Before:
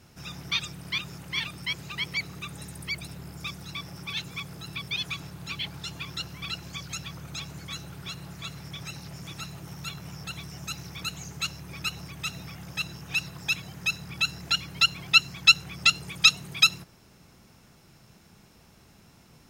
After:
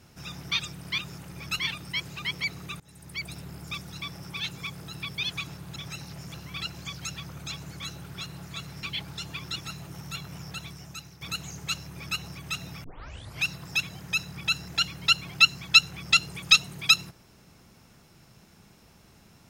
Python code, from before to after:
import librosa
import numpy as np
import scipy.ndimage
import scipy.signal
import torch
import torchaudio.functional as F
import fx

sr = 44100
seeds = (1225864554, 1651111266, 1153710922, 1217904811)

y = fx.edit(x, sr, fx.fade_in_from(start_s=2.53, length_s=0.53, floor_db=-24.0),
    fx.swap(start_s=5.49, length_s=0.73, other_s=8.71, other_length_s=0.58),
    fx.fade_out_to(start_s=10.22, length_s=0.72, floor_db=-11.0),
    fx.duplicate(start_s=11.65, length_s=0.27, to_s=1.32),
    fx.tape_start(start_s=12.57, length_s=0.6), tone=tone)